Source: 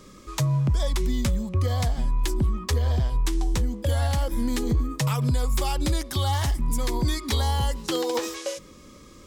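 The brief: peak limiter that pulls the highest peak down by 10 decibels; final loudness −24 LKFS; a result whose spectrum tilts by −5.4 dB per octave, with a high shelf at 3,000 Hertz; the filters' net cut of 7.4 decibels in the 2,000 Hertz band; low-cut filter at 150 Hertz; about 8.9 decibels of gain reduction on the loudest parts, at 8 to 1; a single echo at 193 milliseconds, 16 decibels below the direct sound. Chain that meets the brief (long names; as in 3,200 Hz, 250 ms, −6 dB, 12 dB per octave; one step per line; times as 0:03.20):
high-pass filter 150 Hz
parametric band 2,000 Hz −8 dB
high-shelf EQ 3,000 Hz −3.5 dB
downward compressor 8 to 1, threshold −32 dBFS
brickwall limiter −29.5 dBFS
single-tap delay 193 ms −16 dB
level +14.5 dB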